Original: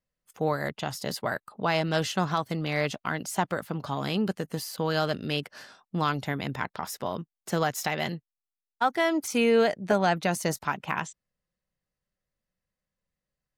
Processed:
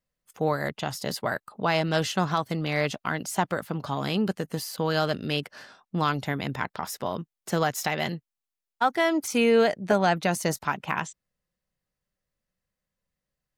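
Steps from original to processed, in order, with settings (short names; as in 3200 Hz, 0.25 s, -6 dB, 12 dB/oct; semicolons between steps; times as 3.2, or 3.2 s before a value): 5.55–5.97 high shelf 5900 Hz -7.5 dB; gain +1.5 dB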